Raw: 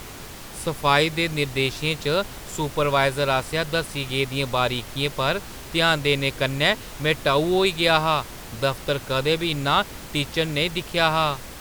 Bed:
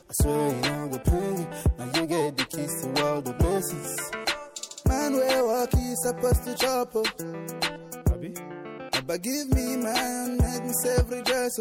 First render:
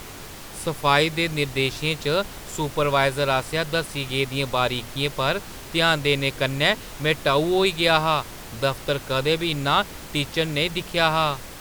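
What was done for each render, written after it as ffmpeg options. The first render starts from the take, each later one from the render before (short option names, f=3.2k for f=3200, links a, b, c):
-af "bandreject=f=60:t=h:w=4,bandreject=f=120:t=h:w=4,bandreject=f=180:t=h:w=4,bandreject=f=240:t=h:w=4"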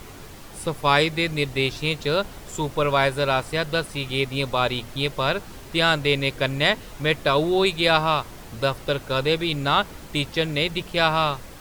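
-af "afftdn=nr=6:nf=-39"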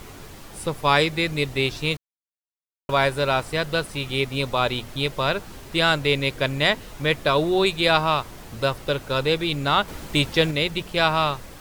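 -filter_complex "[0:a]asplit=5[a][b][c][d][e];[a]atrim=end=1.97,asetpts=PTS-STARTPTS,afade=t=out:st=1.966:d=0.004:c=hsin[f];[b]atrim=start=1.97:end=2.89,asetpts=PTS-STARTPTS,volume=0[g];[c]atrim=start=2.89:end=9.882,asetpts=PTS-STARTPTS,afade=t=in:d=0.004:c=hsin[h];[d]atrim=start=9.878:end=10.512,asetpts=PTS-STARTPTS,volume=4dB[i];[e]atrim=start=10.508[j];[f][g][h]concat=n=3:v=0:a=1[k];[k][i]acrossfade=d=0.004:c1=hsin:c2=hsin[l];[l][j]acrossfade=d=0.004:c1=hsin:c2=hsin"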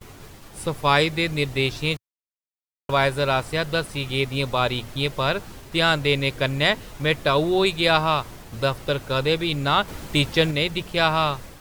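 -af "agate=range=-33dB:threshold=-37dB:ratio=3:detection=peak,equalizer=f=110:w=1.7:g=3"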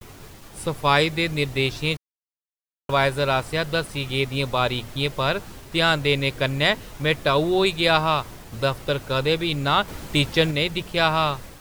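-af "acrusher=bits=7:mix=0:aa=0.5"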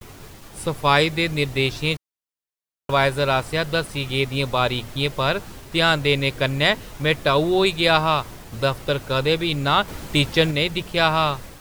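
-af "volume=1.5dB"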